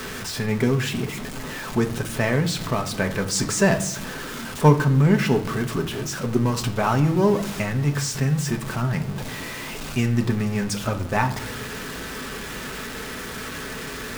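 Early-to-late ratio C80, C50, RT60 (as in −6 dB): 15.5 dB, 13.0 dB, 0.75 s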